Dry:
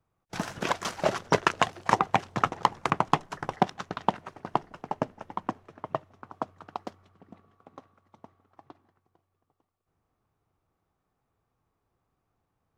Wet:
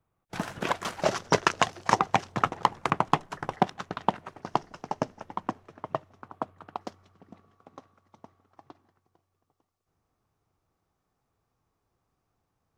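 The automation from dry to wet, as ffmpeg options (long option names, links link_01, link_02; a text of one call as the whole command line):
ffmpeg -i in.wav -af "asetnsamples=nb_out_samples=441:pad=0,asendcmd='1.02 equalizer g 5.5;2.32 equalizer g -1.5;4.42 equalizer g 10;5.2 equalizer g 2.5;6.28 equalizer g -5.5;6.81 equalizer g 5.5',equalizer=frequency=5700:width_type=o:width=0.89:gain=-4.5" out.wav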